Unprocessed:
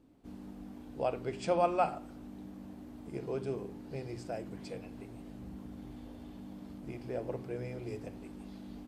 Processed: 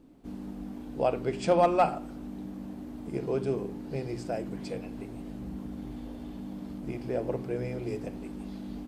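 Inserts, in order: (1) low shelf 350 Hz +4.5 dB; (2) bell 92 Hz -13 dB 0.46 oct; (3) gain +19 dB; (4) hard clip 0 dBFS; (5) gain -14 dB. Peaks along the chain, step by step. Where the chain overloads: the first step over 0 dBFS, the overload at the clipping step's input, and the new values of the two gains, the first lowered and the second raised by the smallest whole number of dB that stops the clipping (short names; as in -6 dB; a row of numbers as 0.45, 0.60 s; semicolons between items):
-14.5, -14.5, +4.5, 0.0, -14.0 dBFS; step 3, 4.5 dB; step 3 +14 dB, step 5 -9 dB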